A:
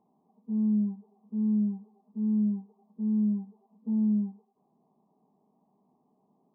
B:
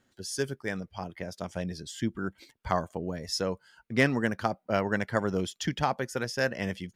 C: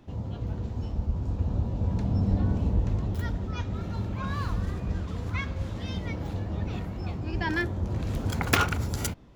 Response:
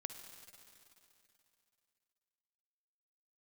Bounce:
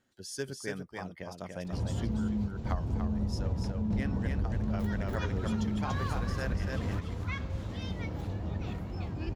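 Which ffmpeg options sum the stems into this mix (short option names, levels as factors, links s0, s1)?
-filter_complex "[0:a]adelay=1600,volume=1[s0];[1:a]volume=0.531,asplit=3[s1][s2][s3];[s2]volume=0.631[s4];[2:a]adelay=1650,volume=1.41,asplit=2[s5][s6];[s6]volume=0.473[s7];[s3]apad=whole_len=485144[s8];[s5][s8]sidechaingate=range=0.0224:threshold=0.00158:ratio=16:detection=peak[s9];[s4][s7]amix=inputs=2:normalize=0,aecho=0:1:288:1[s10];[s0][s1][s9][s10]amix=inputs=4:normalize=0,acompressor=threshold=0.0398:ratio=6"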